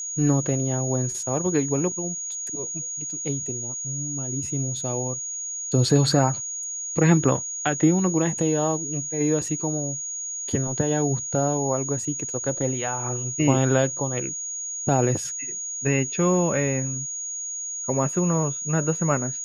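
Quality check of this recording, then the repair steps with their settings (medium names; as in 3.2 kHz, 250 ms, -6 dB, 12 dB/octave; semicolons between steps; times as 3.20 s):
whine 6.7 kHz -29 dBFS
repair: band-stop 6.7 kHz, Q 30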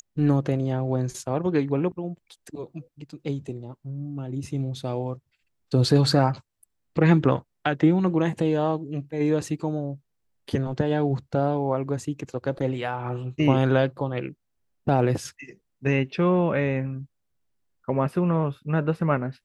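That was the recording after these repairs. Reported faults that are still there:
nothing left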